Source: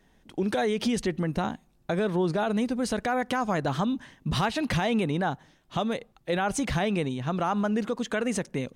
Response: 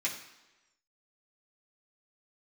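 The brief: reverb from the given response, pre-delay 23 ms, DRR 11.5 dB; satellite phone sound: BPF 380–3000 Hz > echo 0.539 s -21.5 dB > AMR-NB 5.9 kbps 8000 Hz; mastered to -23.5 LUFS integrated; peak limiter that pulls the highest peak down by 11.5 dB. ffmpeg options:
-filter_complex "[0:a]alimiter=level_in=5dB:limit=-24dB:level=0:latency=1,volume=-5dB,asplit=2[a][b];[1:a]atrim=start_sample=2205,adelay=23[c];[b][c]afir=irnorm=-1:irlink=0,volume=-17dB[d];[a][d]amix=inputs=2:normalize=0,highpass=380,lowpass=3k,aecho=1:1:539:0.0841,volume=19.5dB" -ar 8000 -c:a libopencore_amrnb -b:a 5900

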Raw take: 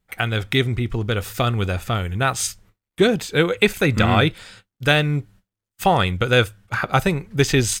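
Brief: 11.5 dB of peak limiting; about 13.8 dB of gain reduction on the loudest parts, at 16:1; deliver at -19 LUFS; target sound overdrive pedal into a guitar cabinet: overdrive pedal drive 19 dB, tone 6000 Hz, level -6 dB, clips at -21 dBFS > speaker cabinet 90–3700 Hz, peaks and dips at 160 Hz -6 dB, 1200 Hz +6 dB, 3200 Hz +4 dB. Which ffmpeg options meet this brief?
-filter_complex "[0:a]acompressor=threshold=-25dB:ratio=16,alimiter=limit=-21dB:level=0:latency=1,asplit=2[a][b];[b]highpass=f=720:p=1,volume=19dB,asoftclip=type=tanh:threshold=-21dB[c];[a][c]amix=inputs=2:normalize=0,lowpass=f=6k:p=1,volume=-6dB,highpass=90,equalizer=f=160:t=q:w=4:g=-6,equalizer=f=1.2k:t=q:w=4:g=6,equalizer=f=3.2k:t=q:w=4:g=4,lowpass=f=3.7k:w=0.5412,lowpass=f=3.7k:w=1.3066,volume=10dB"

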